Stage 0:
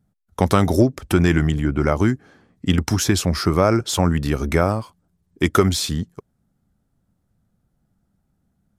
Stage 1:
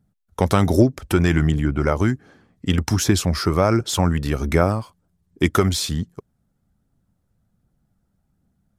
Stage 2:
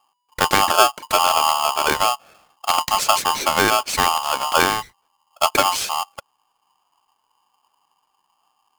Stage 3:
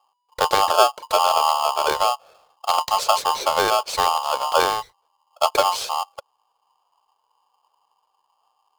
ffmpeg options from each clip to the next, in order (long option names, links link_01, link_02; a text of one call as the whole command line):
ffmpeg -i in.wav -af "aphaser=in_gain=1:out_gain=1:delay=2.3:decay=0.23:speed=1.3:type=triangular,volume=-1dB" out.wav
ffmpeg -i in.wav -af "aeval=exprs='val(0)*sgn(sin(2*PI*980*n/s))':channel_layout=same" out.wav
ffmpeg -i in.wav -af "equalizer=frequency=250:width_type=o:width=1:gain=-10,equalizer=frequency=500:width_type=o:width=1:gain=12,equalizer=frequency=1000:width_type=o:width=1:gain=6,equalizer=frequency=2000:width_type=o:width=1:gain=-4,equalizer=frequency=4000:width_type=o:width=1:gain=7,volume=-7.5dB" out.wav